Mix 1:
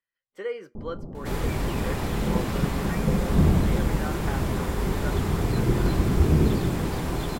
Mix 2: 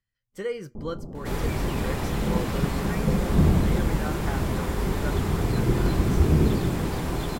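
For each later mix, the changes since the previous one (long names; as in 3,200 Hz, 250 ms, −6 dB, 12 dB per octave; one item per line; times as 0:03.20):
speech: remove three-way crossover with the lows and the highs turned down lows −23 dB, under 290 Hz, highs −13 dB, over 3,500 Hz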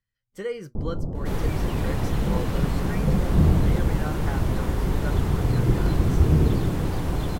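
first sound +8.0 dB
reverb: off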